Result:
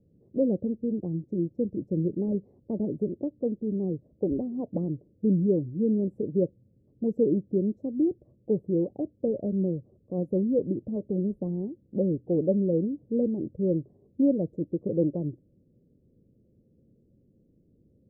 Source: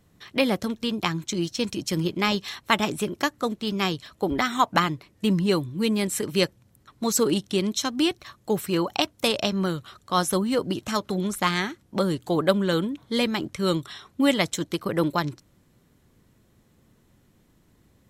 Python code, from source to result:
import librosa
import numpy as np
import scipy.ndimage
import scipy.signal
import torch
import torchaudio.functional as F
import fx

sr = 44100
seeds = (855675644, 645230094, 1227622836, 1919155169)

y = scipy.signal.sosfilt(scipy.signal.ellip(4, 1.0, 60, 530.0, 'lowpass', fs=sr, output='sos'), x)
y = fx.low_shelf(y, sr, hz=62.0, db=-8.0)